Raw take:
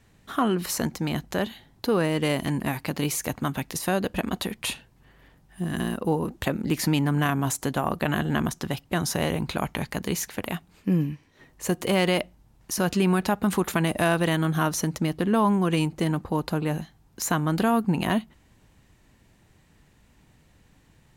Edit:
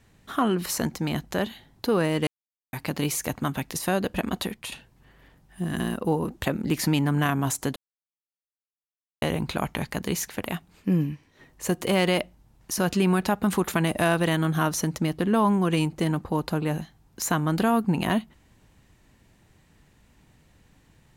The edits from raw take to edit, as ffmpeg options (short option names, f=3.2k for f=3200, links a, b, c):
-filter_complex "[0:a]asplit=6[a][b][c][d][e][f];[a]atrim=end=2.27,asetpts=PTS-STARTPTS,afade=t=out:st=2.266:d=0.004:c=hsin[g];[b]atrim=start=2.27:end=2.73,asetpts=PTS-STARTPTS,volume=0[h];[c]atrim=start=2.73:end=4.72,asetpts=PTS-STARTPTS,afade=t=in:d=0.004:c=hsin,afade=t=out:st=1.73:d=0.26:silence=0.298538[i];[d]atrim=start=4.72:end=7.76,asetpts=PTS-STARTPTS,afade=t=in:d=0.004:c=hsin:silence=0.298538,afade=t=out:st=3.036:d=0.004:c=hsin[j];[e]atrim=start=7.76:end=9.22,asetpts=PTS-STARTPTS,volume=0[k];[f]atrim=start=9.22,asetpts=PTS-STARTPTS,afade=t=in:d=0.004:c=hsin[l];[g][h][i][j][k][l]concat=n=6:v=0:a=1"